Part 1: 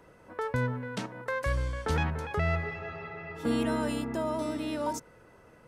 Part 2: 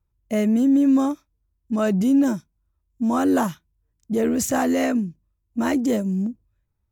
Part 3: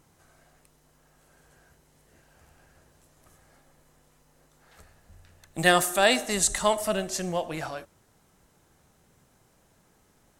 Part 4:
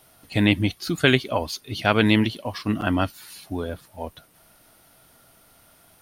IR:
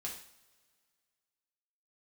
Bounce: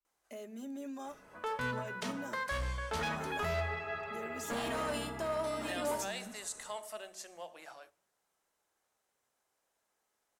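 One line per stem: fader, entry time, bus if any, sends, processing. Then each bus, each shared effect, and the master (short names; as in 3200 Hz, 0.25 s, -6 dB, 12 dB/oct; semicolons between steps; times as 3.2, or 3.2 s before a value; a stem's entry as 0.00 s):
-3.0 dB, 1.05 s, bus B, send -3 dB, comb 4.8 ms, depth 37%; overloaded stage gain 25.5 dB
-13.0 dB, 0.00 s, bus A, send -18.5 dB, comb 5 ms, depth 79%; limiter -16.5 dBFS, peak gain reduction 8.5 dB
-15.5 dB, 0.05 s, bus B, send -18.5 dB, dry
off
bus A: 0.0 dB, Bessel high-pass 490 Hz, order 8; limiter -36.5 dBFS, peak gain reduction 7.5 dB
bus B: 0.0 dB, HPF 500 Hz 12 dB/oct; limiter -30 dBFS, peak gain reduction 9.5 dB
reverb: on, pre-delay 3 ms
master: dry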